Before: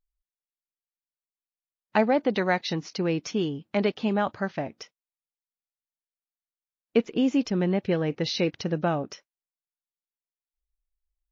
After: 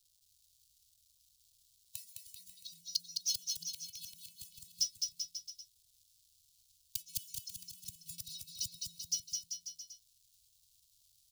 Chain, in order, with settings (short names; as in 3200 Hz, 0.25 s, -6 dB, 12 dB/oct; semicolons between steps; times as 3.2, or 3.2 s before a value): block floating point 5-bit; in parallel at -10.5 dB: crossover distortion -41.5 dBFS; on the sum: HPF 67 Hz 12 dB/oct; metallic resonator 170 Hz, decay 0.34 s, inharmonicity 0.008; compressor 10:1, threshold -35 dBFS, peak gain reduction 11 dB; flipped gate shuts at -36 dBFS, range -24 dB; tone controls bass -4 dB, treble +11 dB; crackle 430/s -71 dBFS; on a send: bouncing-ball echo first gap 0.21 s, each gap 0.85×, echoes 5; on the sum: vocal rider 2 s; inverse Chebyshev band-stop 250–1700 Hz, stop band 50 dB; gain +14.5 dB